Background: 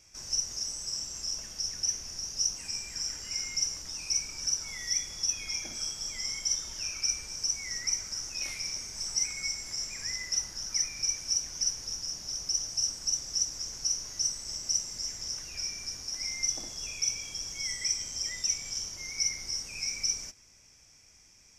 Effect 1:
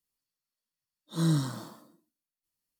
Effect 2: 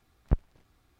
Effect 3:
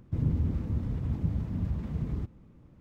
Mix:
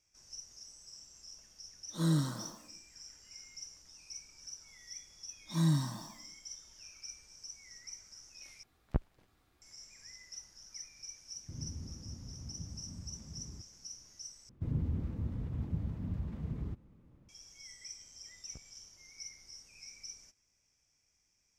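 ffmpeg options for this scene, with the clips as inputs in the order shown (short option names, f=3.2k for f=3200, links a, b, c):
-filter_complex "[1:a]asplit=2[a][b];[2:a]asplit=2[c][d];[3:a]asplit=2[e][f];[0:a]volume=-17.5dB[g];[b]aecho=1:1:1.1:0.84[h];[c]lowshelf=f=120:g=-5.5[i];[e]bandreject=f=460:w=12[j];[d]acompressor=threshold=-45dB:ratio=6:attack=26:release=441:knee=1:detection=rms[k];[g]asplit=3[l][m][n];[l]atrim=end=8.634[o];[i]atrim=end=0.99,asetpts=PTS-STARTPTS,volume=-3dB[p];[m]atrim=start=9.616:end=14.494[q];[f]atrim=end=2.8,asetpts=PTS-STARTPTS,volume=-6.5dB[r];[n]atrim=start=17.286[s];[a]atrim=end=2.79,asetpts=PTS-STARTPTS,volume=-3.5dB,afade=t=in:d=0.004:c=hsin,afade=t=out:st=2.786:d=0.004:c=hsin,adelay=820[t];[h]atrim=end=2.79,asetpts=PTS-STARTPTS,volume=-6dB,afade=t=in:d=0.004:c=hsin,afade=t=out:st=2.786:d=0.004:c=hsin,adelay=4380[u];[j]atrim=end=2.8,asetpts=PTS-STARTPTS,volume=-16dB,afade=t=in:d=0.004:c=hsin,afade=t=out:st=2.796:d=0.004:c=hsin,adelay=11360[v];[k]atrim=end=0.99,asetpts=PTS-STARTPTS,volume=-9dB,afade=t=in:d=0.004:c=hsin,afade=t=out:st=0.986:d=0.004:c=hsin,adelay=18240[w];[o][p]acrossfade=d=0.004:c1=hsin:c2=hsin[x];[x][q]acrossfade=d=0.004:c1=hsin:c2=hsin[y];[y][r]acrossfade=d=0.004:c1=hsin:c2=hsin[z];[z][s]acrossfade=d=0.004:c1=hsin:c2=hsin[aa];[aa][t][u][v][w]amix=inputs=5:normalize=0"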